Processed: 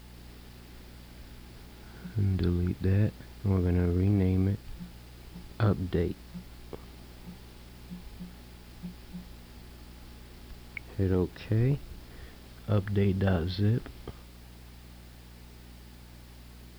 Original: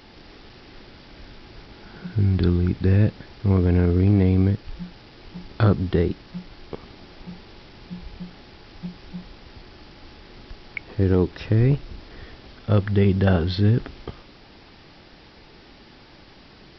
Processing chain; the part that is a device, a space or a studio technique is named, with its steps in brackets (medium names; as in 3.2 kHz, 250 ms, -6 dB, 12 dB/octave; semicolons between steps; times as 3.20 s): video cassette with head-switching buzz (mains buzz 60 Hz, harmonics 4, -42 dBFS -6 dB/octave; white noise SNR 30 dB); trim -8 dB